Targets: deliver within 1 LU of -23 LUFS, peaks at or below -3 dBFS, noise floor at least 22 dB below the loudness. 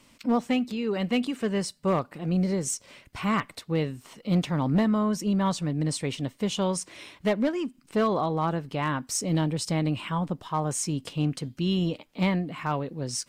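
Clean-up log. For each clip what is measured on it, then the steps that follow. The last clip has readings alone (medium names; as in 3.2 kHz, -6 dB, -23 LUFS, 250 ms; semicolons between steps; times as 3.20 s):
clipped samples 0.5%; clipping level -17.5 dBFS; loudness -28.0 LUFS; peak level -17.5 dBFS; loudness target -23.0 LUFS
-> clip repair -17.5 dBFS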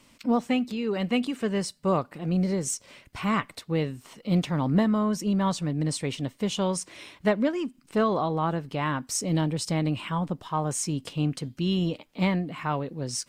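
clipped samples 0.0%; loudness -27.5 LUFS; peak level -10.0 dBFS; loudness target -23.0 LUFS
-> trim +4.5 dB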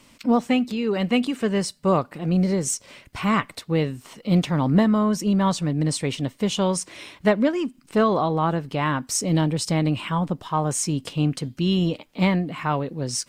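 loudness -23.0 LUFS; peak level -5.5 dBFS; noise floor -56 dBFS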